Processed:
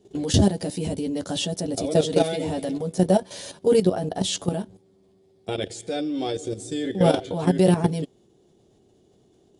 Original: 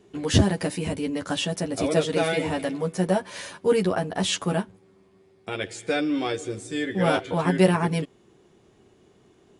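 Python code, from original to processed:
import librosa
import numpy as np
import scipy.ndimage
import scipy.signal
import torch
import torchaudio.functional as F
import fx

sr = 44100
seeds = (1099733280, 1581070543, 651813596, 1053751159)

y = fx.band_shelf(x, sr, hz=1600.0, db=-10.5, octaves=1.7)
y = fx.level_steps(y, sr, step_db=11)
y = y * 10.0 ** (6.5 / 20.0)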